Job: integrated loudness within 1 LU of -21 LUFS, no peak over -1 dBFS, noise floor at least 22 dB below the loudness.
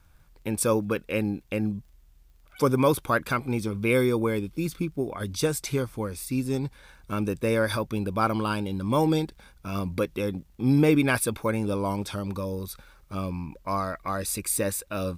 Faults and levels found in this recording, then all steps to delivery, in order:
tick rate 23 per s; loudness -27.0 LUFS; peak level -8.5 dBFS; loudness target -21.0 LUFS
-> de-click; trim +6 dB

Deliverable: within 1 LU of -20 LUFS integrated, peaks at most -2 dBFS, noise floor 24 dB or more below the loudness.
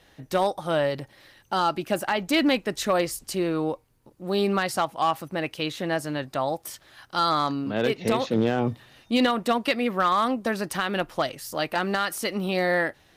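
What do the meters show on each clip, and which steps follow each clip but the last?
clipped samples 0.3%; clipping level -14.0 dBFS; loudness -25.5 LUFS; peak level -14.0 dBFS; loudness target -20.0 LUFS
-> clip repair -14 dBFS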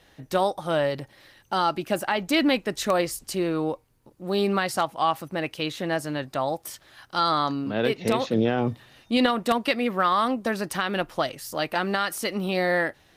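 clipped samples 0.0%; loudness -25.5 LUFS; peak level -6.5 dBFS; loudness target -20.0 LUFS
-> trim +5.5 dB; peak limiter -2 dBFS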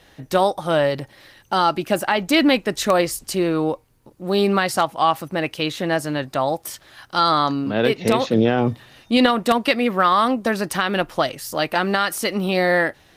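loudness -20.0 LUFS; peak level -2.0 dBFS; noise floor -54 dBFS

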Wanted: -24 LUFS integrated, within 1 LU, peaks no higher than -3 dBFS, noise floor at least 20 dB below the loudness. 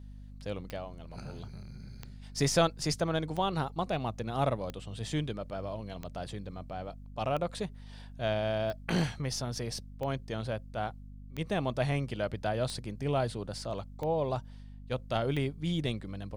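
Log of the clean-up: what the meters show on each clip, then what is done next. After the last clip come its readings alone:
clicks found 12; hum 50 Hz; highest harmonic 250 Hz; hum level -45 dBFS; loudness -34.0 LUFS; peak level -14.0 dBFS; loudness target -24.0 LUFS
-> de-click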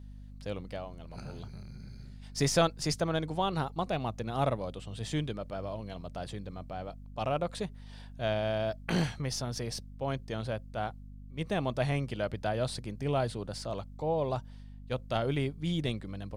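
clicks found 0; hum 50 Hz; highest harmonic 250 Hz; hum level -45 dBFS
-> hum notches 50/100/150/200/250 Hz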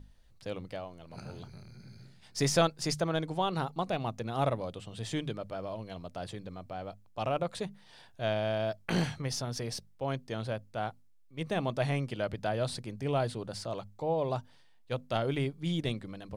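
hum not found; loudness -34.0 LUFS; peak level -13.5 dBFS; loudness target -24.0 LUFS
-> trim +10 dB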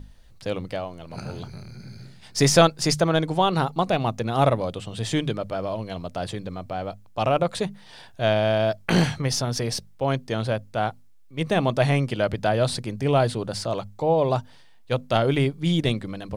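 loudness -24.0 LUFS; peak level -3.5 dBFS; noise floor -49 dBFS

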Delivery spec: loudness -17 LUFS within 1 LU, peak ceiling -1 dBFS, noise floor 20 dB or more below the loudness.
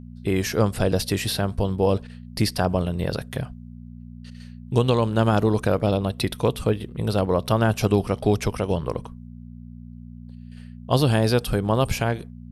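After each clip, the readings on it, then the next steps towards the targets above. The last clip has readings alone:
hum 60 Hz; highest harmonic 240 Hz; hum level -39 dBFS; loudness -23.0 LUFS; peak level -5.5 dBFS; loudness target -17.0 LUFS
-> de-hum 60 Hz, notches 4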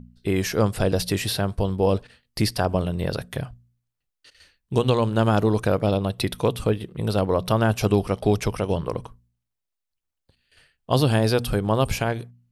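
hum not found; loudness -23.5 LUFS; peak level -6.0 dBFS; loudness target -17.0 LUFS
-> trim +6.5 dB; peak limiter -1 dBFS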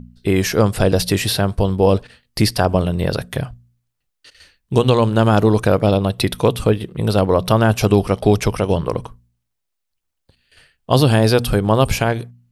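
loudness -17.0 LUFS; peak level -1.0 dBFS; noise floor -76 dBFS

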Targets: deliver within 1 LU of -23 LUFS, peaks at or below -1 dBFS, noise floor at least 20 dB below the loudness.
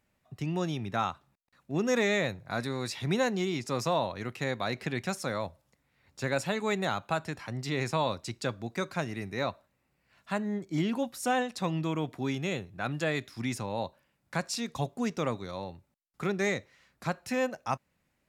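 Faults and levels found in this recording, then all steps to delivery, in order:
loudness -32.5 LUFS; peak level -14.5 dBFS; loudness target -23.0 LUFS
-> trim +9.5 dB

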